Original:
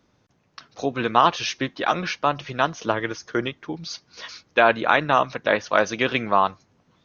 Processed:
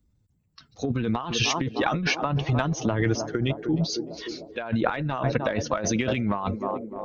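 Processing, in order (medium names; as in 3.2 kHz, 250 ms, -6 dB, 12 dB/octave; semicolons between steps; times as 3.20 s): expander on every frequency bin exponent 1.5; on a send: band-passed feedback delay 304 ms, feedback 82%, band-pass 400 Hz, level -17.5 dB; on the sum: transient shaper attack -8 dB, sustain +1 dB; bass shelf 250 Hz +12 dB; compressor with a negative ratio -30 dBFS, ratio -1; dynamic bell 4.4 kHz, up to -4 dB, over -45 dBFS, Q 1.7; trim +4.5 dB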